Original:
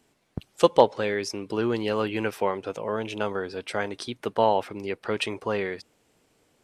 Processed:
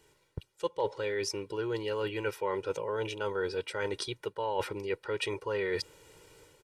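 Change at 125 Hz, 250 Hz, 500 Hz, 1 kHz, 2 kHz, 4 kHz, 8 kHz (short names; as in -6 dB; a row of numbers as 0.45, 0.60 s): -5.5, -10.0, -7.0, -10.0, -5.0, -4.5, -2.0 dB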